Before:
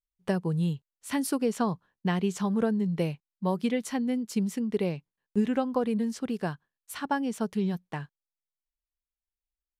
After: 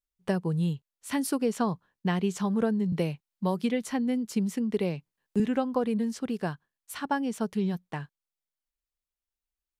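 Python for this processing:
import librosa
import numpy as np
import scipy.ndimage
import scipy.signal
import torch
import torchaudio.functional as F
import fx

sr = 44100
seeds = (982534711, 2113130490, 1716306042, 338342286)

y = fx.band_squash(x, sr, depth_pct=40, at=(2.92, 5.4))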